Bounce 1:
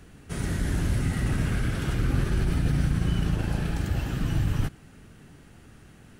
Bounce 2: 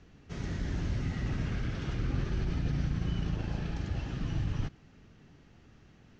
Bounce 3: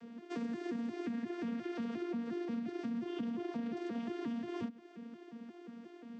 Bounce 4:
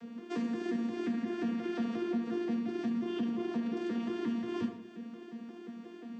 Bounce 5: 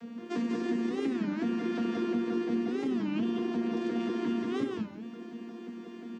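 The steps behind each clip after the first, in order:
Butterworth low-pass 6,500 Hz 48 dB per octave; parametric band 1,500 Hz −3.5 dB 0.3 octaves; level −7 dB
vocoder with an arpeggio as carrier bare fifth, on A#3, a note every 177 ms; downward compressor 6 to 1, threshold −43 dBFS, peak gain reduction 13.5 dB; level +6.5 dB
dense smooth reverb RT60 0.75 s, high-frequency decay 0.85×, pre-delay 0 ms, DRR 4.5 dB; level +3.5 dB
on a send: single-tap delay 192 ms −3.5 dB; on the sum: wow of a warped record 33 1/3 rpm, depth 250 cents; level +2.5 dB

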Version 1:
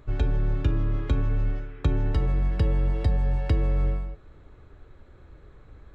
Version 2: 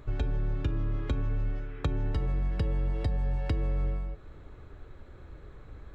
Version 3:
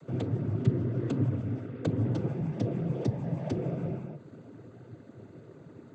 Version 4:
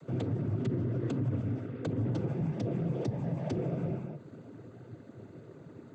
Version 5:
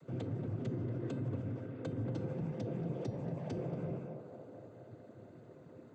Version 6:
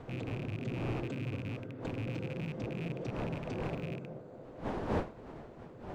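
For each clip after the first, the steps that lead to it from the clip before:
downward compressor 2 to 1, threshold −34 dBFS, peak gain reduction 9.5 dB; level +2 dB
octave-band graphic EQ 250/1,000/2,000/4,000 Hz +5/−7/−8/−7 dB; cochlear-implant simulation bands 16; level +5 dB
brickwall limiter −24 dBFS, peak gain reduction 10.5 dB
tuned comb filter 520 Hz, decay 0.51 s, mix 70%; on a send: feedback echo with a band-pass in the loop 231 ms, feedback 77%, band-pass 660 Hz, level −5.5 dB; on the sum: level +3.5 dB
loose part that buzzes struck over −39 dBFS, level −36 dBFS; wind on the microphone 570 Hz −43 dBFS

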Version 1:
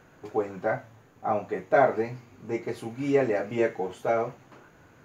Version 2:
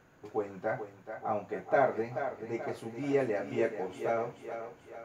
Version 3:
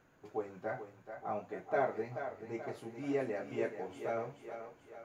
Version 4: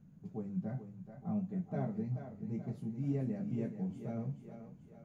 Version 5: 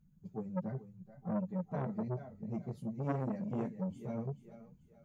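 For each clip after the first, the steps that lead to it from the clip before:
feedback echo with a high-pass in the loop 432 ms, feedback 51%, high-pass 230 Hz, level −8.5 dB; level −6 dB
flanger 0.63 Hz, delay 2.8 ms, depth 8 ms, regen +76%; level −1 dB
drawn EQ curve 100 Hz 0 dB, 190 Hz +13 dB, 320 Hz −13 dB, 1,500 Hz −24 dB, 3,100 Hz −20 dB, 6,100 Hz −16 dB; level +7 dB
spectral dynamics exaggerated over time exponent 1.5; saturating transformer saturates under 730 Hz; level +5.5 dB

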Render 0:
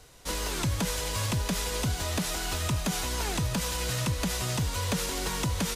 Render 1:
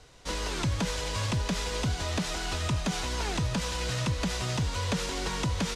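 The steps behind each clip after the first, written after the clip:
low-pass filter 6,400 Hz 12 dB per octave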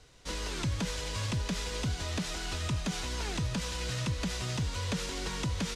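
parametric band 800 Hz −4 dB 1.4 octaves
level −3 dB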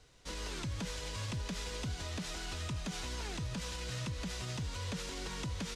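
brickwall limiter −26.5 dBFS, peak gain reduction 3.5 dB
level −4.5 dB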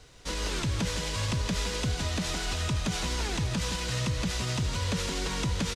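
single-tap delay 161 ms −9 dB
level +9 dB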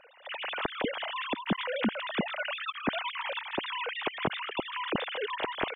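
three sine waves on the formant tracks
level −4 dB

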